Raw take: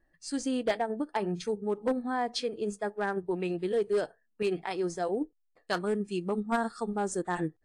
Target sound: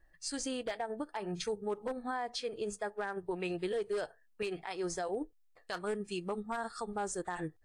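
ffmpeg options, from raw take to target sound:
ffmpeg -i in.wav -af "equalizer=frequency=230:width_type=o:width=1.8:gain=-11,alimiter=level_in=7dB:limit=-24dB:level=0:latency=1:release=215,volume=-7dB,lowshelf=frequency=150:gain=4,volume=3.5dB" out.wav

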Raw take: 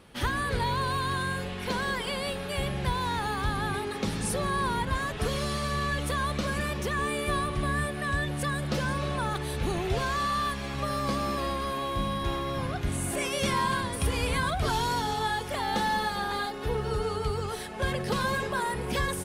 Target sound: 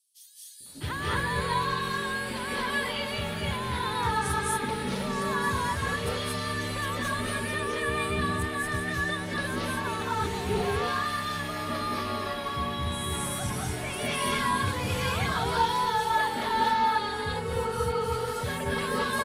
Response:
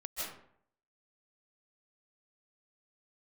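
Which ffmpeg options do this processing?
-filter_complex "[0:a]afreqshift=30,acrossover=split=460|5600[link_01][link_02][link_03];[link_01]adelay=600[link_04];[link_02]adelay=660[link_05];[link_04][link_05][link_03]amix=inputs=3:normalize=0[link_06];[1:a]atrim=start_sample=2205,afade=type=out:start_time=0.22:duration=0.01,atrim=end_sample=10143,asetrate=30429,aresample=44100[link_07];[link_06][link_07]afir=irnorm=-1:irlink=0"

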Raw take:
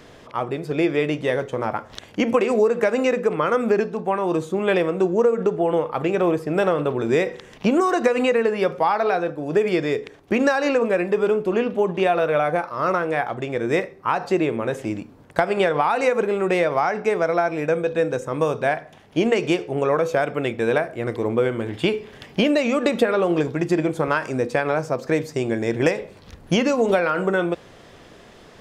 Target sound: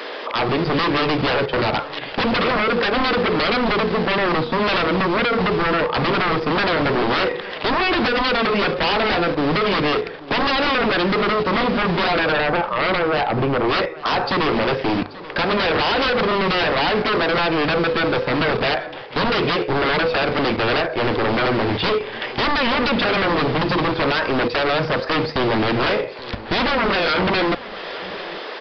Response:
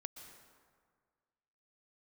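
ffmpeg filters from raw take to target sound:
-filter_complex "[0:a]highpass=44,bandreject=frequency=690:width=13,acrossover=split=360[link_01][link_02];[link_01]acrusher=bits=5:mix=0:aa=0.000001[link_03];[link_03][link_02]amix=inputs=2:normalize=0,asettb=1/sr,asplit=3[link_04][link_05][link_06];[link_04]atrim=end=12.324[link_07];[link_05]atrim=start=12.32:end=13.69,asetpts=PTS-STARTPTS,afade=type=in:duration=0.004:curve=qsin,afade=type=out:start_time=1.366:duration=0.004:curve=qsin,equalizer=frequency=3700:width=0.51:gain=-12.5[link_08];[link_06]atrim=start=13.686[link_09];[link_07][link_08]acrossfade=duration=0.004:curve1=hsin:curve2=qsin[link_10];[link_10][link_09]acrossfade=duration=0.004:curve1=qsin:curve2=hsin,acompressor=threshold=-39dB:ratio=1.5,aeval=exprs='0.266*sin(PI/2*8.91*val(0)/0.266)':channel_layout=same,bandreject=frequency=50:width_type=h:width=6,bandreject=frequency=100:width_type=h:width=6,bandreject=frequency=150:width_type=h:width=6,asplit=2[link_11][link_12];[link_12]aecho=0:1:833:0.126[link_13];[link_11][link_13]amix=inputs=2:normalize=0,aresample=11025,aresample=44100,volume=-4dB"

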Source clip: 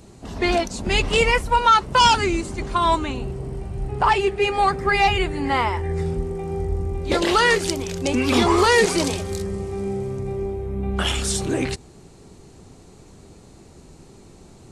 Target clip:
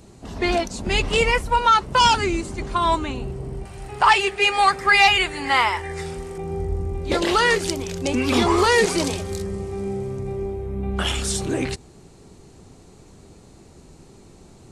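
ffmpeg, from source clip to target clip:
ffmpeg -i in.wav -filter_complex "[0:a]asettb=1/sr,asplit=3[link_01][link_02][link_03];[link_01]atrim=end=3.654[link_04];[link_02]atrim=start=3.65:end=6.38,asetpts=PTS-STARTPTS,afade=type=in:duration=0.004:curve=qsin,afade=type=out:start_time=2.726:duration=0.004:curve=qsin,tiltshelf=frequency=630:gain=-9[link_05];[link_03]atrim=start=6.376[link_06];[link_04][link_05]acrossfade=duration=0.004:curve1=hsin:curve2=qsin[link_07];[link_07][link_06]acrossfade=duration=0.004:curve1=qsin:curve2=hsin,volume=-1dB" out.wav

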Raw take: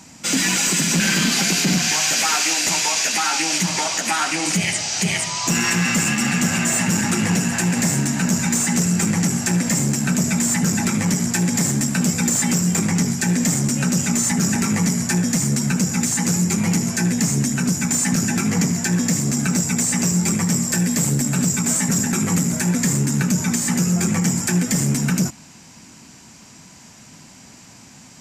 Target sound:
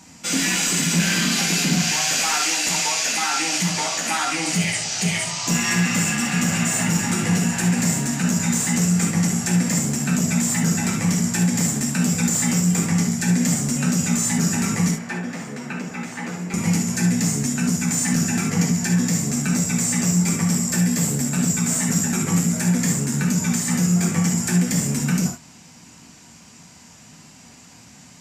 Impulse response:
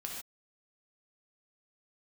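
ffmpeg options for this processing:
-filter_complex "[0:a]asettb=1/sr,asplit=3[link_01][link_02][link_03];[link_01]atrim=end=14.914[link_04];[link_02]atrim=start=14.91:end=16.54,asetpts=PTS-STARTPTS,afade=type=in:duration=0.004:curve=qsin,afade=type=out:start_time=1.626:duration=0.004:curve=qsin,acrossover=split=280 3300:gain=0.158 1 0.1[link_05][link_06][link_07];[link_05][link_06][link_07]amix=inputs=3:normalize=0[link_08];[link_03]atrim=start=16.536[link_09];[link_04][link_08]acrossfade=duration=0.004:curve1=hsin:curve2=qsin[link_10];[link_10][link_09]acrossfade=duration=0.004:curve1=qsin:curve2=hsin[link_11];[1:a]atrim=start_sample=2205,atrim=end_sample=3528[link_12];[link_11][link_12]afir=irnorm=-1:irlink=0"

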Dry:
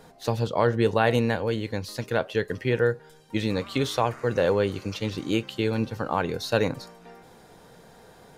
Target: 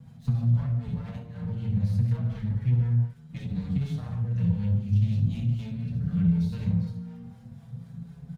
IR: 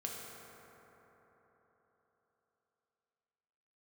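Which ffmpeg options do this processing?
-filter_complex "[0:a]asplit=3[link_01][link_02][link_03];[link_01]afade=type=out:start_time=4.14:duration=0.02[link_04];[link_02]asuperstop=centerf=890:order=4:qfactor=0.72,afade=type=in:start_time=4.14:duration=0.02,afade=type=out:start_time=6.61:duration=0.02[link_05];[link_03]afade=type=in:start_time=6.61:duration=0.02[link_06];[link_04][link_05][link_06]amix=inputs=3:normalize=0,aecho=1:1:59|69:0.501|0.447[link_07];[1:a]atrim=start_sample=2205,afade=type=out:start_time=0.2:duration=0.01,atrim=end_sample=9261[link_08];[link_07][link_08]afir=irnorm=-1:irlink=0,acrossover=split=480[link_09][link_10];[link_09]aeval=exprs='val(0)*(1-0.5/2+0.5/2*cos(2*PI*4*n/s))':channel_layout=same[link_11];[link_10]aeval=exprs='val(0)*(1-0.5/2-0.5/2*cos(2*PI*4*n/s))':channel_layout=same[link_12];[link_11][link_12]amix=inputs=2:normalize=0,acompressor=threshold=-33dB:ratio=6,aeval=exprs='clip(val(0),-1,0.00398)':channel_layout=same,bass=frequency=250:gain=13,treble=frequency=4000:gain=-2,aeval=exprs='sgn(val(0))*max(abs(val(0))-0.00133,0)':channel_layout=same,highpass=58,lowshelf=frequency=240:width_type=q:width=3:gain=11.5,asplit=2[link_13][link_14];[link_14]adelay=5.7,afreqshift=0.4[link_15];[link_13][link_15]amix=inputs=2:normalize=1,volume=-3.5dB"

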